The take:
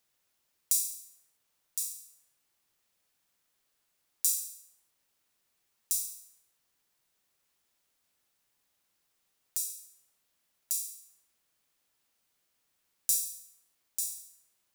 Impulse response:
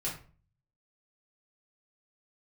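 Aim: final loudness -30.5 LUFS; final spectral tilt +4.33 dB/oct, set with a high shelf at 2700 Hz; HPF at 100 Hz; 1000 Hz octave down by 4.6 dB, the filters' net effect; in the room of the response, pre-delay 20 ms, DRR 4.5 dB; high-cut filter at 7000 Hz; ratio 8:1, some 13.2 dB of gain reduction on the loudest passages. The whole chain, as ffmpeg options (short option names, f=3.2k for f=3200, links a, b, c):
-filter_complex "[0:a]highpass=100,lowpass=7k,equalizer=f=1k:t=o:g=-7.5,highshelf=f=2.7k:g=7.5,acompressor=threshold=-36dB:ratio=8,asplit=2[a][b];[1:a]atrim=start_sample=2205,adelay=20[c];[b][c]afir=irnorm=-1:irlink=0,volume=-8dB[d];[a][d]amix=inputs=2:normalize=0,volume=10.5dB"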